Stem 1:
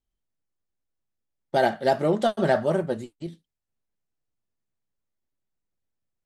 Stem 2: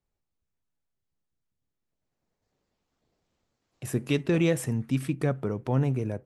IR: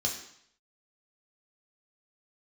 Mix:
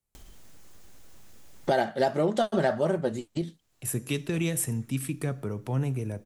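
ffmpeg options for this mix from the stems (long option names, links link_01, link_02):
-filter_complex "[0:a]equalizer=frequency=6700:width_type=o:width=0.35:gain=3.5,acompressor=mode=upward:threshold=-10dB:ratio=2.5,adelay=150,volume=-7dB[link_01];[1:a]equalizer=frequency=11000:width=0.62:gain=14,acrossover=split=240|3000[link_02][link_03][link_04];[link_03]acompressor=threshold=-25dB:ratio=6[link_05];[link_02][link_05][link_04]amix=inputs=3:normalize=0,volume=-3dB,asplit=3[link_06][link_07][link_08];[link_07]volume=-19dB[link_09];[link_08]apad=whole_len=282403[link_10];[link_01][link_10]sidechaincompress=threshold=-46dB:ratio=4:attack=16:release=1350[link_11];[2:a]atrim=start_sample=2205[link_12];[link_09][link_12]afir=irnorm=-1:irlink=0[link_13];[link_11][link_06][link_13]amix=inputs=3:normalize=0"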